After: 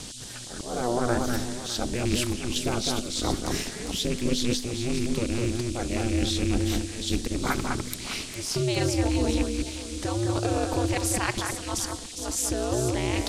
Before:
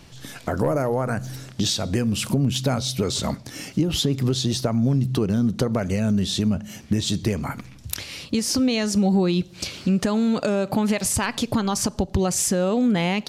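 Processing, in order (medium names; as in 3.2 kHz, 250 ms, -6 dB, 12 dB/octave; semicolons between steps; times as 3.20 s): rattle on loud lows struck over -20 dBFS, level -22 dBFS; reverse; compression 10:1, threshold -28 dBFS, peak gain reduction 12.5 dB; reverse; slow attack 240 ms; gain riding within 4 dB 2 s; on a send: echo whose repeats swap between lows and highs 203 ms, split 2.2 kHz, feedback 56%, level -3 dB; on the sum: ring modulator 120 Hz; band noise 3.1–9.4 kHz -49 dBFS; trim +7 dB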